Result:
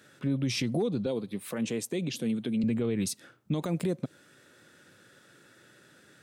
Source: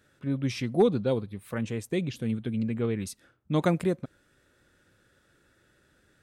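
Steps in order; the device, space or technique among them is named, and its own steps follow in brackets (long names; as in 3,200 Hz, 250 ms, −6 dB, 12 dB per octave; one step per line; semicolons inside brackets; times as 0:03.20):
broadcast voice chain (high-pass filter 120 Hz 24 dB per octave; de-essing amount 75%; downward compressor 4 to 1, threshold −29 dBFS, peak gain reduction 11 dB; parametric band 5,600 Hz +3 dB 2.5 octaves; brickwall limiter −27 dBFS, peak gain reduction 10 dB)
0:01.06–0:02.64: high-pass filter 180 Hz 12 dB per octave
dynamic equaliser 1,500 Hz, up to −6 dB, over −56 dBFS, Q 0.91
level +7 dB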